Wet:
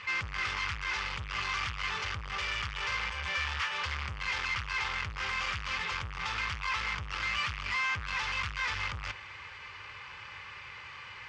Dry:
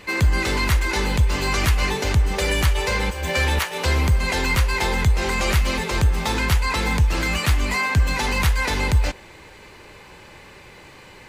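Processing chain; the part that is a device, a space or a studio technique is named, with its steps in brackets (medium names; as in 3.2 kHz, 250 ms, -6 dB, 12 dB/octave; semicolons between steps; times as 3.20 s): scooped metal amplifier (valve stage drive 31 dB, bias 0.45; cabinet simulation 91–4500 Hz, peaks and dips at 100 Hz +5 dB, 160 Hz -3 dB, 310 Hz +5 dB, 670 Hz -8 dB, 1.2 kHz +8 dB, 4 kHz -10 dB; amplifier tone stack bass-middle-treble 10-0-10); trim +7.5 dB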